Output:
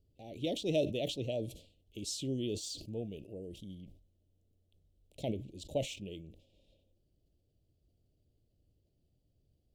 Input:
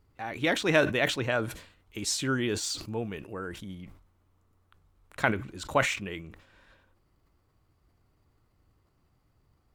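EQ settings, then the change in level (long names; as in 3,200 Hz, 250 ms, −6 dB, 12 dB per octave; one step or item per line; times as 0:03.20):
elliptic band-stop filter 620–3,000 Hz, stop band 80 dB
high-shelf EQ 5,000 Hz −5.5 dB
−5.5 dB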